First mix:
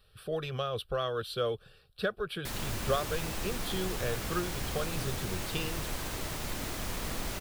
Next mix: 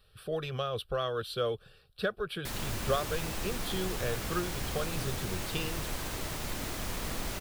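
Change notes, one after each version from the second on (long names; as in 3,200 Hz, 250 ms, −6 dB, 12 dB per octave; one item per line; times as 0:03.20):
nothing changed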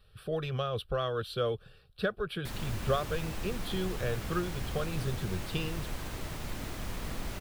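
background −3.5 dB
master: add bass and treble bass +4 dB, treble −4 dB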